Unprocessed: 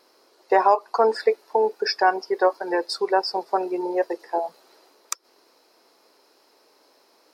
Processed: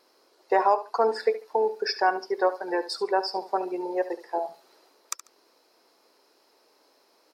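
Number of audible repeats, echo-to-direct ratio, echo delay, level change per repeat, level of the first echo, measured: 2, −14.0 dB, 71 ms, −13.5 dB, −14.0 dB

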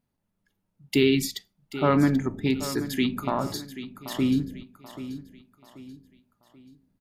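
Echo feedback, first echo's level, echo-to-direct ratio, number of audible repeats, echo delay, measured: 39%, −13.0 dB, −12.5 dB, 3, 784 ms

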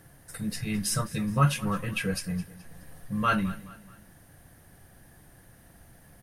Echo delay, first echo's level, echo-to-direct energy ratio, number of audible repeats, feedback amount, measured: 212 ms, −18.5 dB, −17.5 dB, 3, 43%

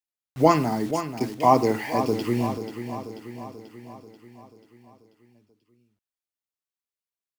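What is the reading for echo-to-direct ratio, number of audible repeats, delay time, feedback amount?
−8.5 dB, 6, 487 ms, 57%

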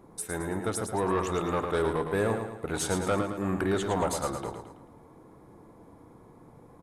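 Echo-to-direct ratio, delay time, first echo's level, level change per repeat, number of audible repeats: −5.5 dB, 110 ms, −6.5 dB, −6.5 dB, 5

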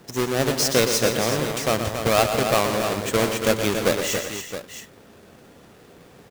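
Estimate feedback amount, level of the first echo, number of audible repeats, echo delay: repeats not evenly spaced, −8.5 dB, 5, 119 ms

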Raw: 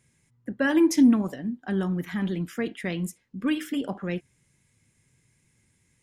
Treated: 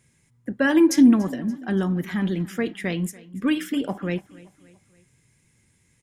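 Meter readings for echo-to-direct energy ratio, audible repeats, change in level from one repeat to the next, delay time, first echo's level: −20.0 dB, 3, −6.5 dB, 287 ms, −21.0 dB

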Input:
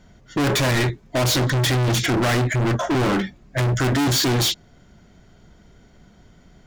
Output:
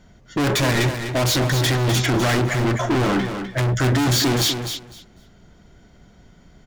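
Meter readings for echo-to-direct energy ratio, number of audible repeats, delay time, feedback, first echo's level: −8.0 dB, 2, 252 ms, 17%, −8.0 dB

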